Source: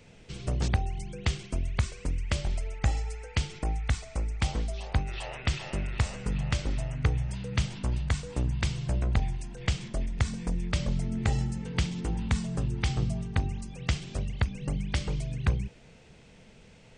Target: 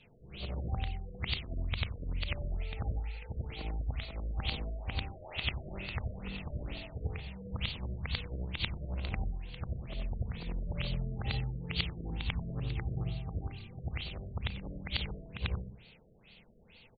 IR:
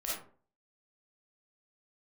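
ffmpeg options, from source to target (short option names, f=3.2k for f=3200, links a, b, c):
-filter_complex "[0:a]afftfilt=real='re':imag='-im':win_size=8192:overlap=0.75,bandreject=f=50:t=h:w=6,bandreject=f=100:t=h:w=6,bandreject=f=150:t=h:w=6,bandreject=f=200:t=h:w=6,bandreject=f=250:t=h:w=6,bandreject=f=300:t=h:w=6,aexciter=amount=6.2:drive=2.7:freq=2.4k,asplit=2[a][b];[b]adelay=127,lowpass=f=2k:p=1,volume=-16dB,asplit=2[c][d];[d]adelay=127,lowpass=f=2k:p=1,volume=0.26,asplit=2[e][f];[f]adelay=127,lowpass=f=2k:p=1,volume=0.26[g];[a][c][e][g]amix=inputs=4:normalize=0,afftfilt=real='re*lt(b*sr/1024,670*pow(4700/670,0.5+0.5*sin(2*PI*2.2*pts/sr)))':imag='im*lt(b*sr/1024,670*pow(4700/670,0.5+0.5*sin(2*PI*2.2*pts/sr)))':win_size=1024:overlap=0.75,volume=-2.5dB"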